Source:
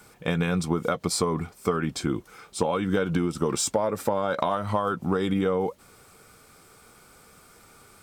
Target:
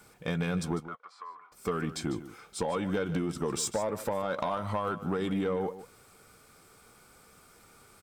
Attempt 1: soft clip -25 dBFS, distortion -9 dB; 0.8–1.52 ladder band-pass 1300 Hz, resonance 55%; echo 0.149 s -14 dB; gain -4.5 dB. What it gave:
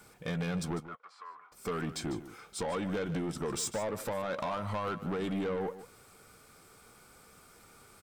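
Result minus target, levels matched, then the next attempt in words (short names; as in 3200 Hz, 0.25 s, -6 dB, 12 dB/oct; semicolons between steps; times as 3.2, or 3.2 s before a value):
soft clip: distortion +8 dB
soft clip -17 dBFS, distortion -17 dB; 0.8–1.52 ladder band-pass 1300 Hz, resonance 55%; echo 0.149 s -14 dB; gain -4.5 dB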